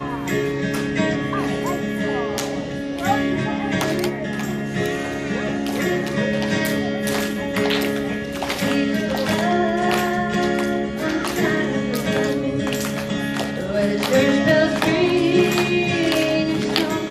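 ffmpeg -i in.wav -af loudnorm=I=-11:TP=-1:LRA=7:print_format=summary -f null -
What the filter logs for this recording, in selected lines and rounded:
Input Integrated:    -20.4 LUFS
Input True Peak:      -1.7 dBTP
Input LRA:             4.5 LU
Input Threshold:     -30.4 LUFS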